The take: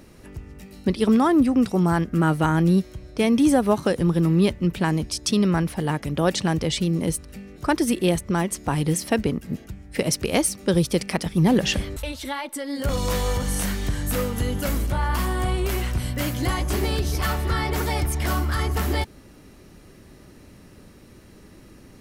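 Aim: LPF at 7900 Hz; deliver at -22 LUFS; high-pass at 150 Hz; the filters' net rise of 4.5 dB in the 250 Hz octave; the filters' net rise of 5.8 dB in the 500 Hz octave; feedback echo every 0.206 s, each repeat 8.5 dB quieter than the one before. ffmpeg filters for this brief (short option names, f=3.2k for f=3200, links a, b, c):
-af "highpass=150,lowpass=7.9k,equalizer=f=250:t=o:g=5.5,equalizer=f=500:t=o:g=5.5,aecho=1:1:206|412|618|824:0.376|0.143|0.0543|0.0206,volume=-2.5dB"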